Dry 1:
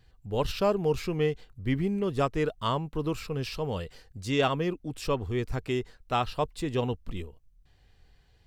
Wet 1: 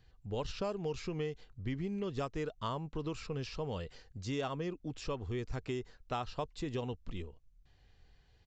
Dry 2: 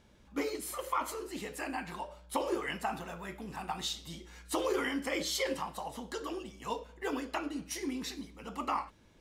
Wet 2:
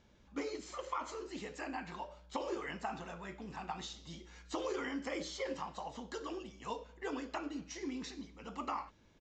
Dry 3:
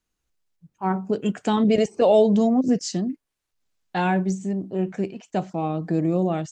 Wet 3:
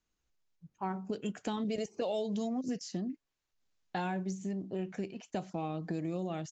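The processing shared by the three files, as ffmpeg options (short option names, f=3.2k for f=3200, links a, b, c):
-filter_complex "[0:a]aresample=16000,aresample=44100,acrossover=split=1900|4800[a][b][c];[a]acompressor=threshold=-31dB:ratio=4[d];[b]acompressor=threshold=-49dB:ratio=4[e];[c]acompressor=threshold=-47dB:ratio=4[f];[d][e][f]amix=inputs=3:normalize=0,volume=-3.5dB"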